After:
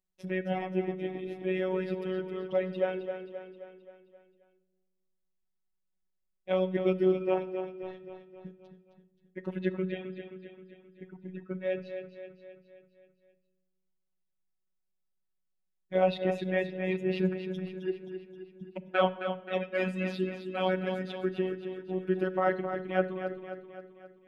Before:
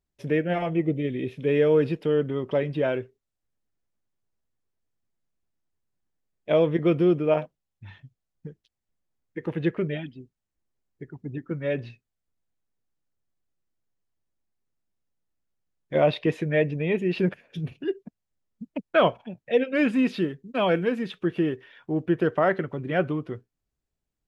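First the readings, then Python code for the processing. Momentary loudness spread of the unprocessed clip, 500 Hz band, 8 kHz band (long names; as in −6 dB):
15 LU, −5.5 dB, can't be measured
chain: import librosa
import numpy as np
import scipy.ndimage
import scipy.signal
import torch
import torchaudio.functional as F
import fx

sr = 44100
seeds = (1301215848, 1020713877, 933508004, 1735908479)

p1 = fx.dereverb_blind(x, sr, rt60_s=1.8)
p2 = p1 + fx.echo_feedback(p1, sr, ms=264, feedback_pct=54, wet_db=-9.0, dry=0)
p3 = fx.robotise(p2, sr, hz=186.0)
p4 = fx.room_shoebox(p3, sr, seeds[0], volume_m3=1600.0, walls='mixed', distance_m=0.35)
y = F.gain(torch.from_numpy(p4), -3.5).numpy()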